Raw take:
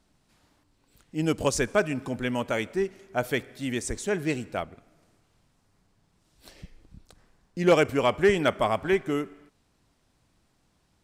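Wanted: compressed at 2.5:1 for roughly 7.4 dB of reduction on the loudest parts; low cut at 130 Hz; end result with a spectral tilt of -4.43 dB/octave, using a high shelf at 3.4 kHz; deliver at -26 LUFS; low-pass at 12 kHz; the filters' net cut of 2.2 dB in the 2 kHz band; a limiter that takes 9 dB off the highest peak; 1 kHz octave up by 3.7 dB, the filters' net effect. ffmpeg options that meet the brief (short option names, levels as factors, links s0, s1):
-af "highpass=130,lowpass=12000,equalizer=f=1000:t=o:g=6,equalizer=f=2000:t=o:g=-6.5,highshelf=f=3400:g=5,acompressor=threshold=0.0501:ratio=2.5,volume=2.37,alimiter=limit=0.2:level=0:latency=1"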